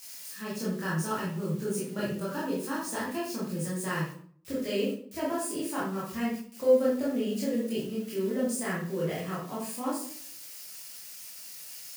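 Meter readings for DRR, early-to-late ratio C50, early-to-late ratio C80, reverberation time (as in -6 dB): -8.0 dB, 2.5 dB, 7.0 dB, 0.55 s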